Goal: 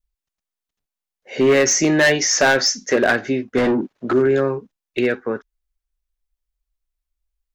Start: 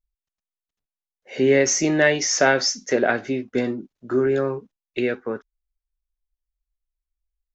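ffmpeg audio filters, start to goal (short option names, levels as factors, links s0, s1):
-filter_complex "[0:a]adynamicequalizer=threshold=0.0158:dfrequency=1700:dqfactor=4.1:tfrequency=1700:tqfactor=4.1:attack=5:release=100:ratio=0.375:range=2.5:mode=boostabove:tftype=bell,asoftclip=type=hard:threshold=0.211,asettb=1/sr,asplit=3[s0][s1][s2];[s0]atrim=end=3.574[s3];[s1]atrim=start=3.57:end=4.13,asetpts=PTS-STARTPTS,afade=t=in:d=0.004:c=qsin,afade=t=out:st=0.556:d=0.004:c=qsin,asplit=2[s4][s5];[s5]highpass=f=720:p=1,volume=20,asoftclip=type=tanh:threshold=0.211[s6];[s4][s6]amix=inputs=2:normalize=0,lowpass=f=1100:p=1,volume=0.501[s7];[s2]atrim=start=4.126[s8];[s3][s7]acrossfade=d=0.004:c1=hsin:c2=qsin[s9];[s9][s8]acrossfade=d=0.004:c1=qsin:c2=hsin,volume=1.58"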